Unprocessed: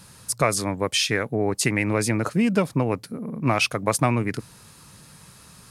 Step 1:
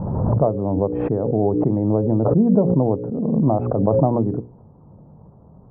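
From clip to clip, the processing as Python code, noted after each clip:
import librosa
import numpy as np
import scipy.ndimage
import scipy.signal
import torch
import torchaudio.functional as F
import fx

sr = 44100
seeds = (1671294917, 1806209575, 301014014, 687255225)

y = scipy.signal.sosfilt(scipy.signal.butter(6, 820.0, 'lowpass', fs=sr, output='sos'), x)
y = fx.hum_notches(y, sr, base_hz=60, count=9)
y = fx.pre_swell(y, sr, db_per_s=29.0)
y = y * 10.0 ** (5.0 / 20.0)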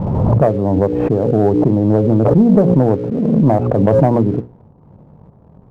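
y = fx.leveller(x, sr, passes=1)
y = y * 10.0 ** (2.5 / 20.0)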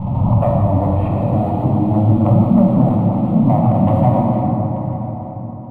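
y = fx.fixed_phaser(x, sr, hz=1600.0, stages=6)
y = fx.echo_feedback(y, sr, ms=882, feedback_pct=18, wet_db=-17.0)
y = fx.rev_plate(y, sr, seeds[0], rt60_s=4.3, hf_ratio=0.45, predelay_ms=0, drr_db=-3.0)
y = y * 10.0 ** (-2.0 / 20.0)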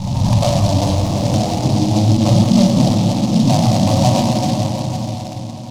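y = x + 10.0 ** (-14.0 / 20.0) * np.pad(x, (int(501 * sr / 1000.0), 0))[:len(x)]
y = fx.noise_mod_delay(y, sr, seeds[1], noise_hz=4300.0, depth_ms=0.082)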